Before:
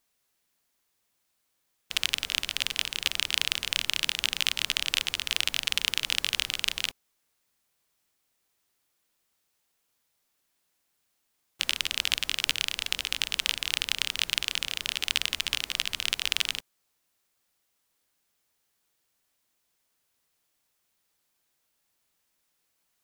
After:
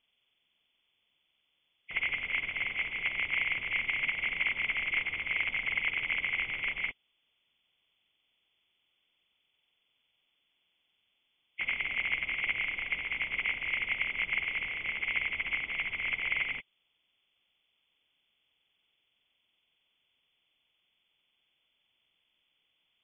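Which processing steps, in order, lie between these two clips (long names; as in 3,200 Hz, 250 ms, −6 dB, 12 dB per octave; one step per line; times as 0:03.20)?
hearing-aid frequency compression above 1,900 Hz 4 to 1
high-shelf EQ 2,700 Hz −9.5 dB
level −2 dB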